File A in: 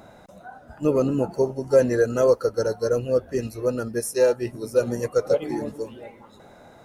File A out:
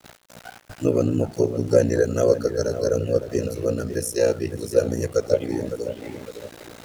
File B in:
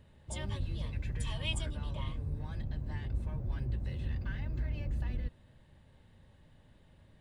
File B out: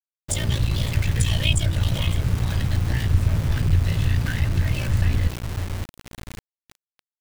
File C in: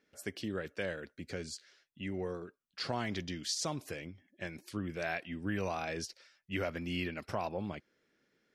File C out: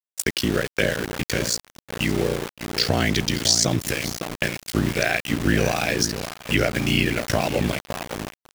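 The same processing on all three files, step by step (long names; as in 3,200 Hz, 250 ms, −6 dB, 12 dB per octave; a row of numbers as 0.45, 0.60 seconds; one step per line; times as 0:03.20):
on a send: feedback echo with a low-pass in the loop 558 ms, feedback 37%, low-pass 1,500 Hz, level −9 dB
on the sum: ring modulation 29 Hz
graphic EQ with 15 bands 100 Hz +7 dB, 1,000 Hz −10 dB, 6,300 Hz +4 dB
centre clipping without the shift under −47 dBFS
noise gate −52 dBFS, range −13 dB
one half of a high-frequency compander encoder only
loudness normalisation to −23 LKFS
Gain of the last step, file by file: +3.5, +14.0, +17.0 decibels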